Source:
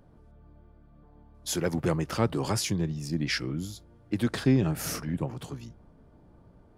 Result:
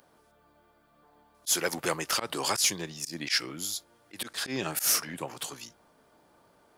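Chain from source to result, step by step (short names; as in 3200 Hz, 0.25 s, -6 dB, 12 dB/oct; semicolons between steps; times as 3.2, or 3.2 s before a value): RIAA curve recording; auto swell 0.109 s; overdrive pedal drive 9 dB, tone 6500 Hz, clips at -11.5 dBFS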